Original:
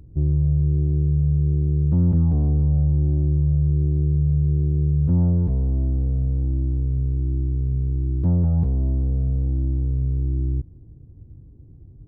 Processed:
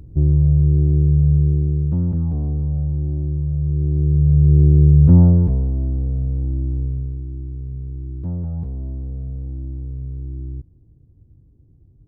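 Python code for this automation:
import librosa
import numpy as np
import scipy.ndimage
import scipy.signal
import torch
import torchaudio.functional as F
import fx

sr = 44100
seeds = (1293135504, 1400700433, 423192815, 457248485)

y = fx.gain(x, sr, db=fx.line((1.36, 5.0), (2.1, -2.5), (3.51, -2.5), (4.62, 9.0), (5.15, 9.0), (5.73, 0.5), (6.84, 0.5), (7.26, -6.5)))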